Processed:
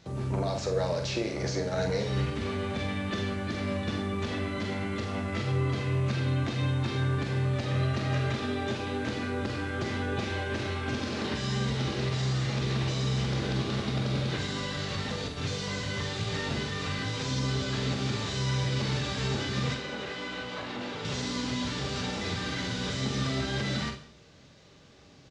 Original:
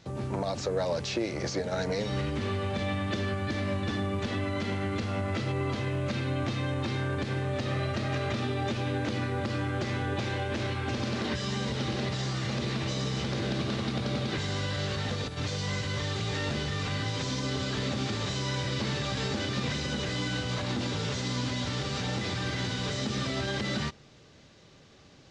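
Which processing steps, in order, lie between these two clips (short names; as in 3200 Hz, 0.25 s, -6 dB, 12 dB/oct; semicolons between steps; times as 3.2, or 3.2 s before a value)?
19.74–21.05 tone controls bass -12 dB, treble -12 dB; early reflections 45 ms -6.5 dB, 76 ms -14.5 dB; non-linear reverb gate 0.25 s falling, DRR 8.5 dB; gain -1.5 dB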